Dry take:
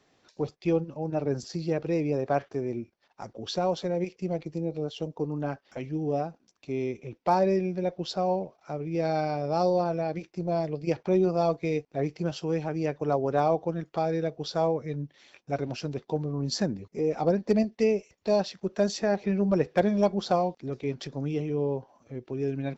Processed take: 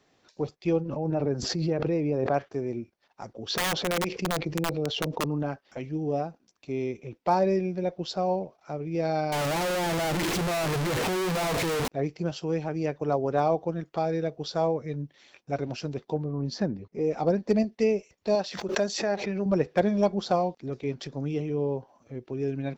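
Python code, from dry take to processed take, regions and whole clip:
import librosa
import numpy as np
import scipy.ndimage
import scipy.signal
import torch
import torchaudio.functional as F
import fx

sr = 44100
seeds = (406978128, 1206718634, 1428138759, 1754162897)

y = fx.chain(x, sr, fx.lowpass(hz=2200.0, slope=6),
    fx.pre_swell(db_per_s=27.0), at=(0.82, 2.34))
y = fx.chain(y, sr, fx.lowpass(hz=4800.0, slope=12),
    fx.overflow_wrap(gain_db=22.0),
    fx.env_flatten(amount_pct=70), at=(3.5, 5.43))
y = fx.chain(y, sr, fx.clip_1bit(),
    fx.doppler_dist(depth_ms=0.38), at=(9.32, 11.88))
y = fx.chain(y, sr, fx.lowpass(hz=6200.0, slope=24),
    fx.high_shelf(hz=3300.0, db=-9.0), at=(16.14, 17.01))
y = fx.chain(y, sr, fx.low_shelf(hz=270.0, db=-8.5),
    fx.pre_swell(db_per_s=75.0), at=(18.35, 19.46))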